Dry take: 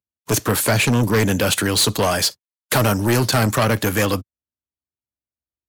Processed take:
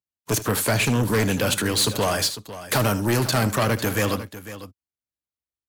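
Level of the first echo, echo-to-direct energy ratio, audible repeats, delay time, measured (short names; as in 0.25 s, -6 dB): -15.0 dB, -11.5 dB, 2, 77 ms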